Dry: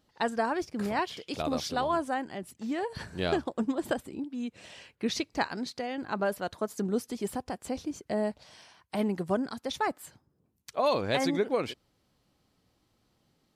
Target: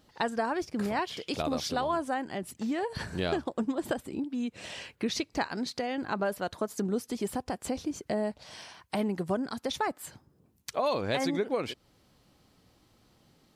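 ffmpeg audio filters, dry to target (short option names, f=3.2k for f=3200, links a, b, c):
-af "acompressor=threshold=-41dB:ratio=2,volume=7.5dB"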